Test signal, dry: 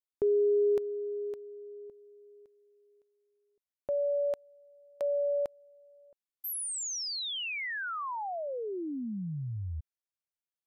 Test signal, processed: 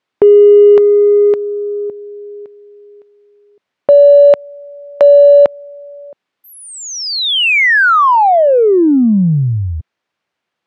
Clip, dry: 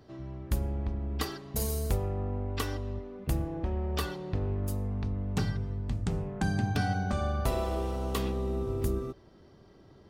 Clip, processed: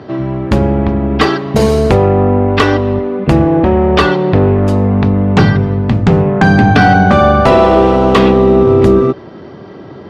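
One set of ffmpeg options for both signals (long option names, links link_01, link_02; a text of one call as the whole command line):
ffmpeg -i in.wav -af "highpass=140,lowpass=2800,apsyclip=28.5dB,aeval=exprs='1.06*(cos(1*acos(clip(val(0)/1.06,-1,1)))-cos(1*PI/2))+0.0106*(cos(7*acos(clip(val(0)/1.06,-1,1)))-cos(7*PI/2))':channel_layout=same,volume=-1.5dB" out.wav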